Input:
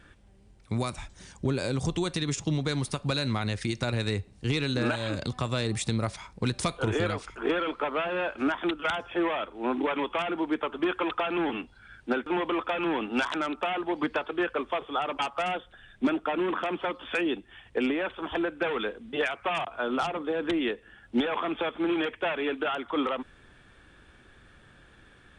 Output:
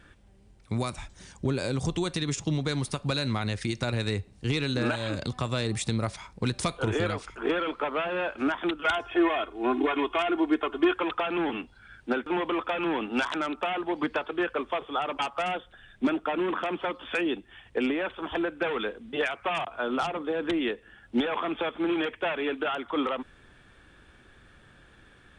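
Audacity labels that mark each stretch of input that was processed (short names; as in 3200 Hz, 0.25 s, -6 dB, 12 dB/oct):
8.860000	10.940000	comb 2.8 ms, depth 77%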